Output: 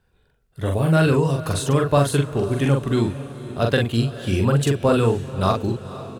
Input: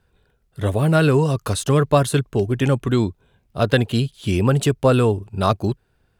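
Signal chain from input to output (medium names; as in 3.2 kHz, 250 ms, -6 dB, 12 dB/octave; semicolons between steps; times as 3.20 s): doubling 43 ms -3.5 dB; on a send: echo that smears into a reverb 502 ms, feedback 54%, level -15 dB; on the sum: trim -3 dB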